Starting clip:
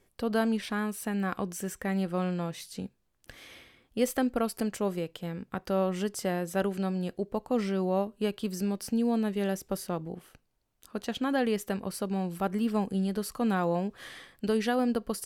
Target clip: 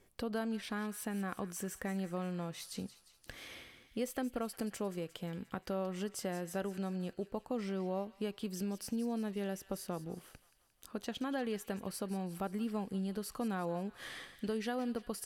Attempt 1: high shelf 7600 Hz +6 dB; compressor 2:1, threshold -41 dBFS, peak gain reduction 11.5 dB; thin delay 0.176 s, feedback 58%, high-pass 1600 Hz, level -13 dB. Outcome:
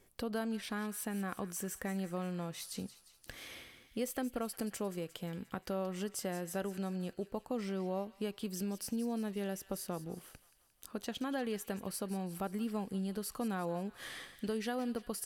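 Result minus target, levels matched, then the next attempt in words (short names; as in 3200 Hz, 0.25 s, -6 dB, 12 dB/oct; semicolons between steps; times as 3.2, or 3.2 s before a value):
8000 Hz band +3.0 dB
compressor 2:1, threshold -41 dBFS, peak gain reduction 11.5 dB; thin delay 0.176 s, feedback 58%, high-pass 1600 Hz, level -13 dB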